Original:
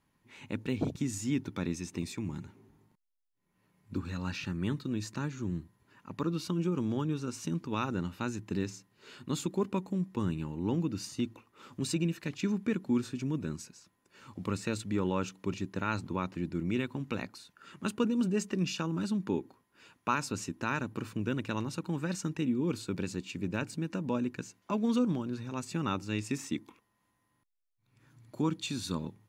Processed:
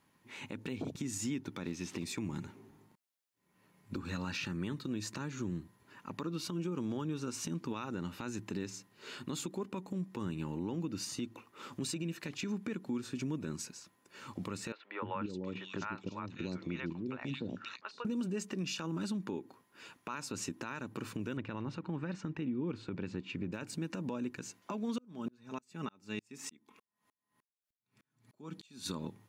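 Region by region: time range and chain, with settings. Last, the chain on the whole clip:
1.64–2.05 s: zero-crossing glitches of -37 dBFS + low-pass 4.3 kHz + short-mantissa float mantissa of 6-bit
14.72–18.05 s: low-pass 5.7 kHz 24 dB/octave + three bands offset in time mids, lows, highs 300/540 ms, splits 560/2800 Hz + square tremolo 1.2 Hz, depth 65%, duty 65%
21.37–23.52 s: low-pass 2.7 kHz + peaking EQ 70 Hz +5.5 dB 2.3 oct
24.98–28.86 s: comb 4.7 ms, depth 38% + sawtooth tremolo in dB swelling 3.3 Hz, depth 39 dB
whole clip: high-pass 170 Hz 6 dB/octave; compression, threshold -38 dBFS; peak limiter -33 dBFS; trim +5 dB

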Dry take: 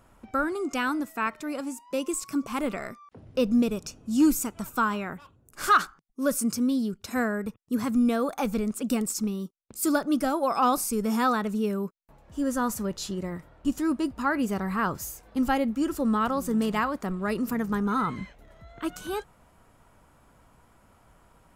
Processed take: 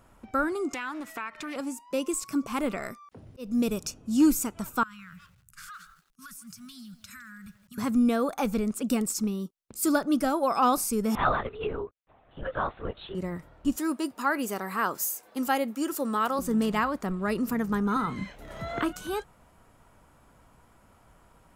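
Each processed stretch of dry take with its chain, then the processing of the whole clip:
0.74–1.56 s: peaking EQ 2.3 kHz +11 dB 2.8 oct + compression 4:1, threshold -34 dBFS + loudspeaker Doppler distortion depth 0.27 ms
2.83–3.94 s: treble shelf 5.8 kHz +8 dB + slow attack 330 ms
4.83–7.78 s: elliptic band-stop 180–1300 Hz + compression 10:1, threshold -42 dBFS + bit-crushed delay 161 ms, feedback 35%, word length 9-bit, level -14 dB
11.15–13.15 s: brick-wall FIR high-pass 300 Hz + LPC vocoder at 8 kHz whisper
13.76–16.39 s: high-pass 320 Hz + treble shelf 7.9 kHz +10.5 dB
17.96–18.93 s: doubling 30 ms -11.5 dB + three bands compressed up and down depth 100%
whole clip: none

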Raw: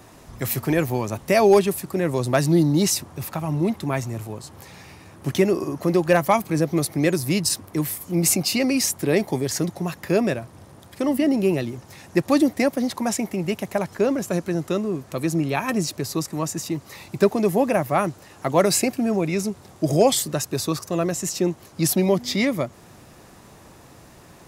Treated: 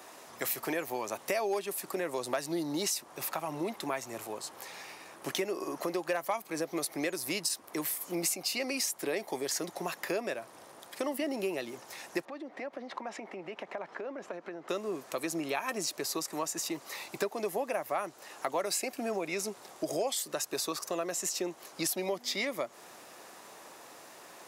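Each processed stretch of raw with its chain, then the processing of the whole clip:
12.25–14.69 s: band-pass 160–2300 Hz + compression 20:1, threshold -30 dBFS
whole clip: high-pass 480 Hz 12 dB/octave; compression 4:1, threshold -31 dBFS

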